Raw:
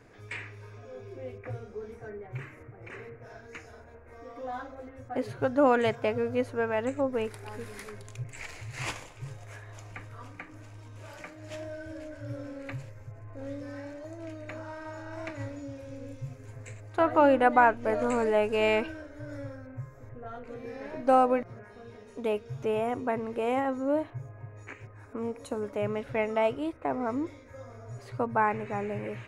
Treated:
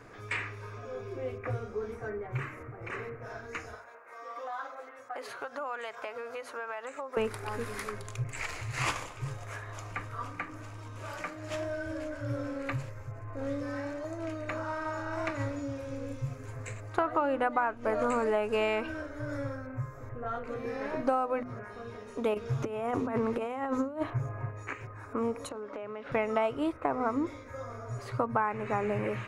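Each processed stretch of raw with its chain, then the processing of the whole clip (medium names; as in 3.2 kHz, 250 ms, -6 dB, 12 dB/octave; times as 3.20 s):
3.75–7.17 s: high-pass 710 Hz + compression, threshold -40 dBFS
22.34–24.51 s: compressor with a negative ratio -33 dBFS, ratio -0.5 + loudspeaker Doppler distortion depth 0.11 ms
25.49–26.12 s: three-band isolator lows -16 dB, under 210 Hz, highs -24 dB, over 5 kHz + compression 12:1, threshold -40 dBFS
whole clip: peaking EQ 1.2 kHz +7.5 dB 0.53 oct; hum notches 50/100/150/200/250 Hz; compression 8:1, threshold -29 dBFS; trim +4 dB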